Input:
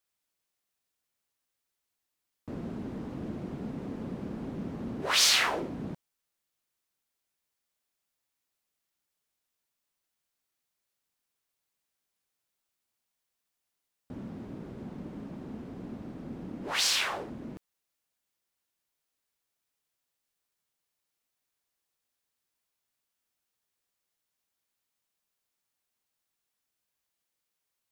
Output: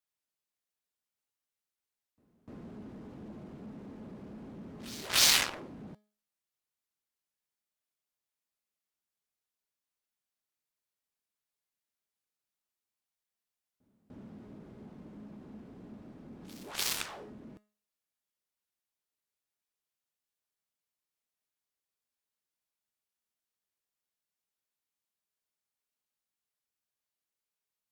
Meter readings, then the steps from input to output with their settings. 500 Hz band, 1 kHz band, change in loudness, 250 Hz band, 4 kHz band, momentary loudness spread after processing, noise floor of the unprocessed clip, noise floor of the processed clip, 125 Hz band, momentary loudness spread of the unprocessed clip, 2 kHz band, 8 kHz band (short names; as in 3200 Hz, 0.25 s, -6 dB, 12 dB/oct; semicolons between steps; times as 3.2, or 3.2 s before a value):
-8.0 dB, -6.5 dB, +1.5 dB, -8.5 dB, -3.0 dB, 25 LU, -85 dBFS, under -85 dBFS, -8.5 dB, 19 LU, -4.0 dB, -0.5 dB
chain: resonator 210 Hz, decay 0.39 s, harmonics all, mix 60%; added harmonics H 7 -14 dB, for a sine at -17.5 dBFS; pre-echo 0.298 s -23 dB; gain +7 dB